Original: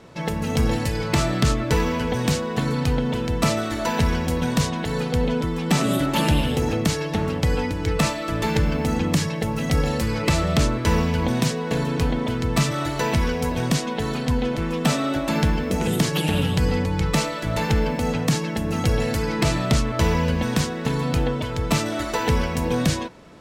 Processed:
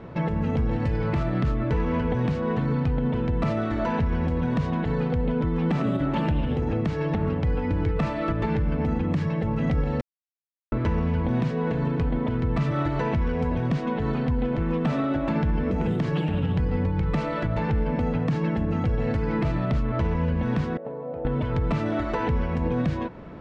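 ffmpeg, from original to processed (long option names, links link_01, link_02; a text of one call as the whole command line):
ffmpeg -i in.wav -filter_complex "[0:a]asettb=1/sr,asplit=3[link_01][link_02][link_03];[link_01]atrim=end=20.774[link_04];[link_02]atrim=start=20.77:end=21.25,asetpts=PTS-STARTPTS,afade=type=in:duration=0.004:curve=qsin,afade=type=out:start_time=0.476:duration=0.004:curve=qsin,bandpass=frequency=580:width_type=q:width=6[link_05];[link_03]atrim=start=21.246[link_06];[link_04][link_05]acrossfade=duration=0.004:curve1=hsin:curve2=qsin[link_07];[link_07][link_06]acrossfade=duration=0.004:curve1=qsin:curve2=hsin,asplit=3[link_08][link_09][link_10];[link_08]atrim=end=10.01,asetpts=PTS-STARTPTS,afade=type=out:start_time=10.006:duration=0.004:curve=hsin[link_11];[link_09]atrim=start=10.01:end=10.72,asetpts=PTS-STARTPTS,volume=0[link_12];[link_10]atrim=start=10.72,asetpts=PTS-STARTPTS,afade=type=in:duration=0.004:curve=hsin[link_13];[link_11][link_12][link_13]concat=n=3:v=0:a=1,lowpass=2000,lowshelf=frequency=250:gain=6,alimiter=limit=-20dB:level=0:latency=1:release=269,volume=3.5dB" out.wav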